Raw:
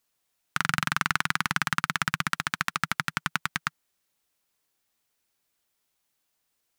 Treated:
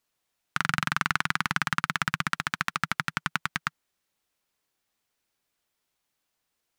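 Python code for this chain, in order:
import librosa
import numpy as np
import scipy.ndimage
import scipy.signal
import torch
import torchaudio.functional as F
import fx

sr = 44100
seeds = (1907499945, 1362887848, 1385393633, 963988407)

y = fx.high_shelf(x, sr, hz=6400.0, db=-6.0)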